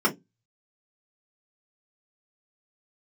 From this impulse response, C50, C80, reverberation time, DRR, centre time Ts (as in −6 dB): 18.5 dB, 30.5 dB, 0.15 s, −4.0 dB, 11 ms